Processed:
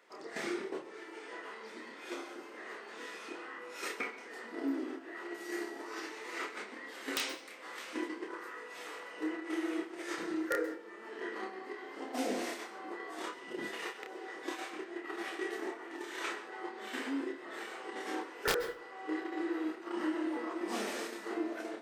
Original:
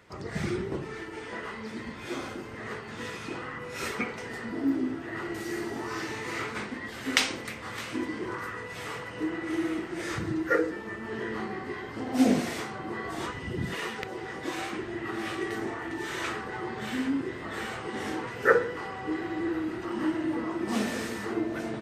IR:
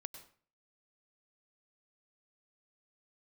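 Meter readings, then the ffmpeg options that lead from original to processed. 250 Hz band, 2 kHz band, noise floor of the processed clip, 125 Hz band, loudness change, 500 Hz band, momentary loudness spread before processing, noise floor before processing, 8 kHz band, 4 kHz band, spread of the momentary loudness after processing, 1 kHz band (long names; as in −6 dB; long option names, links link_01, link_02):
−8.5 dB, −7.5 dB, −50 dBFS, below −20 dB, −7.5 dB, −7.0 dB, 11 LU, −41 dBFS, −6.0 dB, −6.5 dB, 9 LU, −6.5 dB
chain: -filter_complex "[0:a]agate=range=-12dB:threshold=-32dB:ratio=16:detection=peak,highpass=frequency=310:width=0.5412,highpass=frequency=310:width=1.3066,acompressor=threshold=-49dB:ratio=2,aeval=exprs='(mod(25.1*val(0)+1,2)-1)/25.1':channel_layout=same,asplit=2[link_01][link_02];[1:a]atrim=start_sample=2205,adelay=29[link_03];[link_02][link_03]afir=irnorm=-1:irlink=0,volume=0.5dB[link_04];[link_01][link_04]amix=inputs=2:normalize=0,volume=5dB"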